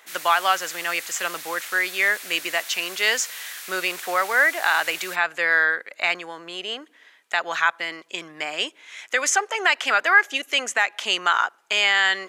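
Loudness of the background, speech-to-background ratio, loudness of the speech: -35.0 LUFS, 13.0 dB, -22.0 LUFS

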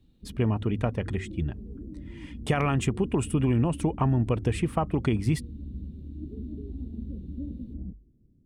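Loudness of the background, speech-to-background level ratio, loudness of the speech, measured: -40.5 LUFS, 13.0 dB, -27.5 LUFS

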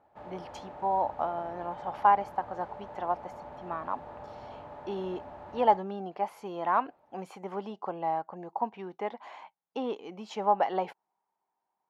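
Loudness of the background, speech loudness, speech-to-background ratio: -45.5 LUFS, -32.0 LUFS, 13.5 dB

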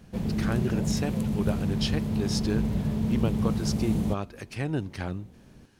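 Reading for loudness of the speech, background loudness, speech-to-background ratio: -32.5 LUFS, -28.5 LUFS, -4.0 dB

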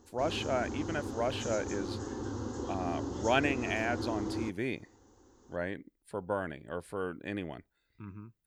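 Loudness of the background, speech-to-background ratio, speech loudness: -38.5 LUFS, 3.0 dB, -35.5 LUFS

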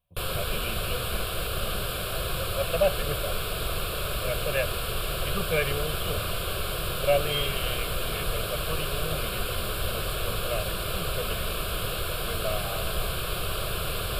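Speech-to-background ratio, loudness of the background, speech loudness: -3.5 dB, -30.0 LUFS, -33.5 LUFS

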